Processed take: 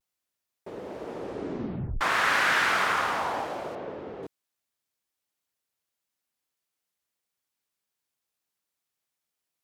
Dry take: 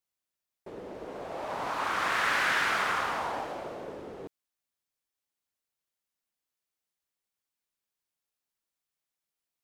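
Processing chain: high-pass 58 Hz; vibrato 0.34 Hz 25 cents; 1.00 s: tape stop 1.01 s; 3.75–4.23 s: low-pass 3.5 kHz 12 dB/octave; trim +3.5 dB

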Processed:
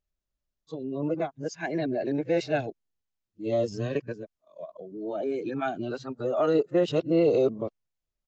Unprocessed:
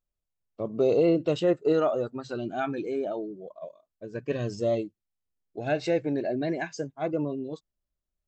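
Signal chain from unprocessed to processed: reverse the whole clip; resampled via 16 kHz

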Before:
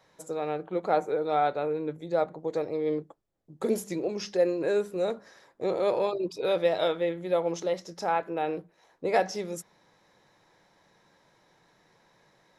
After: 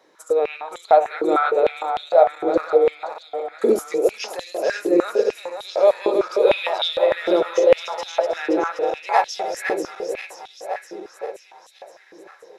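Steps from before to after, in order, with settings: backward echo that repeats 262 ms, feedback 78%, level -5 dB; step-sequenced high-pass 6.6 Hz 330–3500 Hz; trim +3.5 dB

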